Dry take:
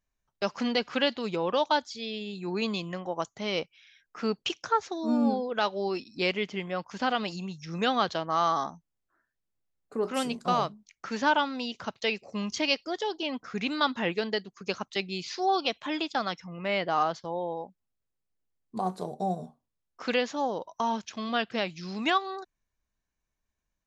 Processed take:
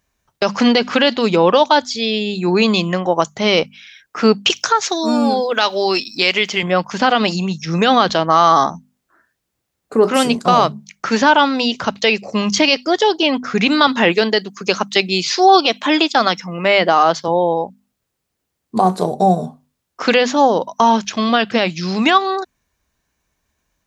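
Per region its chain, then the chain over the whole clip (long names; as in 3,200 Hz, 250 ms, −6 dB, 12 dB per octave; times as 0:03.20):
0:04.50–0:06.63: spectral tilt +3 dB per octave + downward compressor 2.5 to 1, threshold −28 dBFS
0:13.87–0:17.28: high-pass filter 180 Hz + high-shelf EQ 6,600 Hz +5 dB
whole clip: high-pass filter 47 Hz; mains-hum notches 50/100/150/200/250 Hz; boost into a limiter +18 dB; level −1 dB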